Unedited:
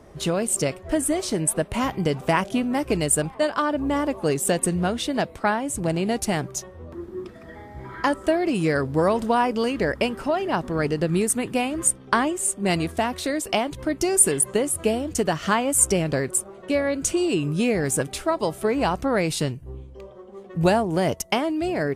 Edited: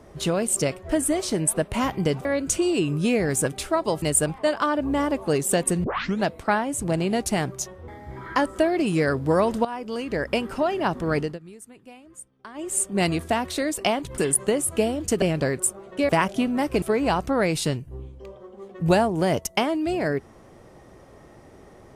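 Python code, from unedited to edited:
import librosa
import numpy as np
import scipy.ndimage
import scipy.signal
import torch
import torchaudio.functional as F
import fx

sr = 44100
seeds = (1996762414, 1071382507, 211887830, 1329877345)

y = fx.edit(x, sr, fx.swap(start_s=2.25, length_s=0.73, other_s=16.8, other_length_s=1.77),
    fx.tape_start(start_s=4.8, length_s=0.41),
    fx.cut(start_s=6.84, length_s=0.72),
    fx.fade_in_from(start_s=9.33, length_s=0.82, floor_db=-15.5),
    fx.fade_down_up(start_s=10.87, length_s=1.55, db=-22.0, fade_s=0.2),
    fx.cut(start_s=13.86, length_s=0.39),
    fx.cut(start_s=15.29, length_s=0.64), tone=tone)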